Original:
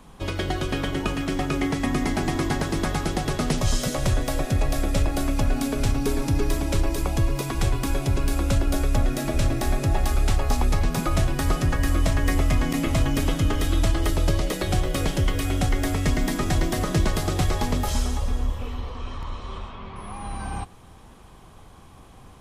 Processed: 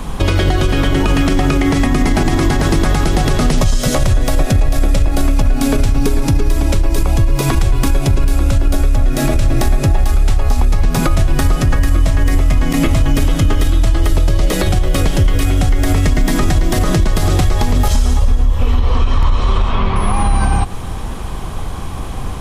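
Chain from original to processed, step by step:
low-shelf EQ 70 Hz +9.5 dB
downward compressor 10 to 1, threshold −26 dBFS, peak gain reduction 16.5 dB
boost into a limiter +24 dB
level −3.5 dB

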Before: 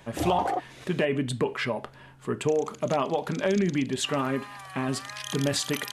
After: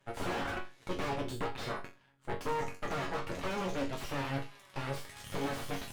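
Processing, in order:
harmonic generator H 3 −15 dB, 8 −7 dB, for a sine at −12.5 dBFS
resonators tuned to a chord F#2 major, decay 0.28 s
slew-rate limiting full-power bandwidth 27 Hz

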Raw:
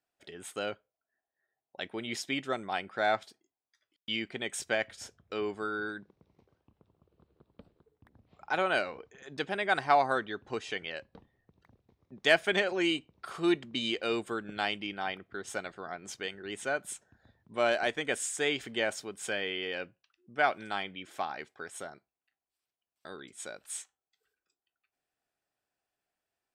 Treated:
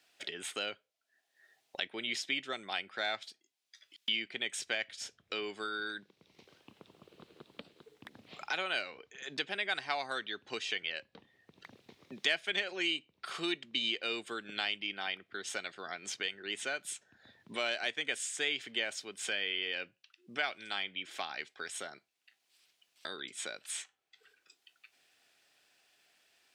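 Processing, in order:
meter weighting curve D
multiband upward and downward compressor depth 70%
level −8.5 dB

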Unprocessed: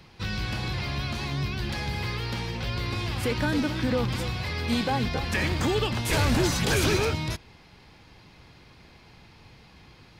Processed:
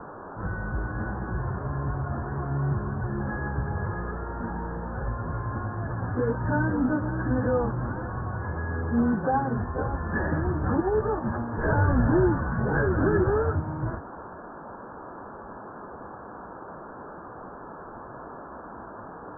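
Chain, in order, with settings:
time stretch by phase vocoder 1.9×
noise in a band 170–1,300 Hz −45 dBFS
Chebyshev low-pass filter 1,700 Hz, order 8
level +4 dB

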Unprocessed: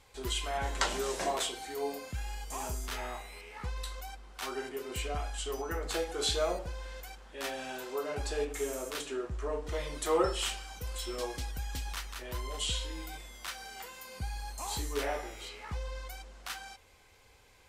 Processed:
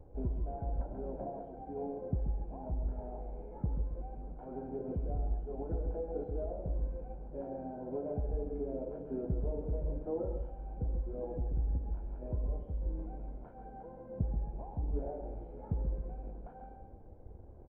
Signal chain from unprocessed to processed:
loose part that buzzes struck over −47 dBFS, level −33 dBFS
comb filter 1.3 ms, depth 76%
downward compressor 8 to 1, threshold −39 dBFS, peak gain reduction 16 dB
log-companded quantiser 4 bits
transistor ladder low-pass 540 Hz, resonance 30%
repeating echo 134 ms, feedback 32%, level −8 dB
pitch-shifted copies added −7 semitones −11 dB
on a send: single-tap delay 148 ms −13.5 dB
on the sum: level +14 dB
Ogg Vorbis 48 kbit/s 32,000 Hz

